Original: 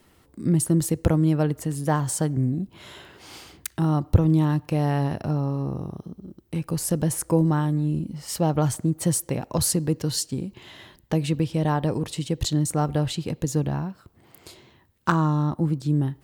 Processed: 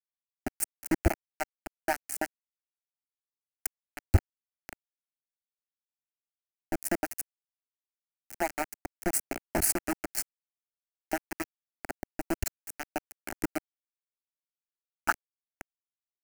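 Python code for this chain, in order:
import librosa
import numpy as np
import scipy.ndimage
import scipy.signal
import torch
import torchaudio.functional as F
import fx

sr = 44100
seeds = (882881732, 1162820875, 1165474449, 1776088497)

y = fx.hpss_only(x, sr, part='percussive')
y = np.where(np.abs(y) >= 10.0 ** (-20.5 / 20.0), y, 0.0)
y = fx.fixed_phaser(y, sr, hz=720.0, stages=8)
y = F.gain(torch.from_numpy(y), 1.5).numpy()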